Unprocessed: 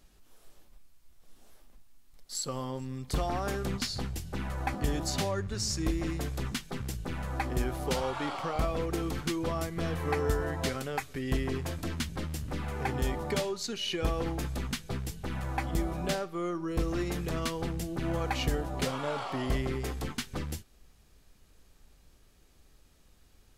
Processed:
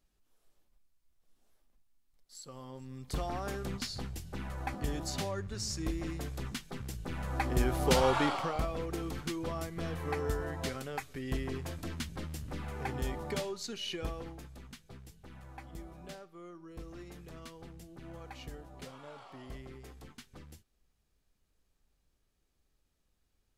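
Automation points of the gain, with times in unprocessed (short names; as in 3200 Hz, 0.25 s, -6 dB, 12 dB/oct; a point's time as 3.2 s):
2.36 s -15 dB
3.11 s -5 dB
6.89 s -5 dB
8.15 s +6.5 dB
8.67 s -5 dB
13.9 s -5 dB
14.49 s -16 dB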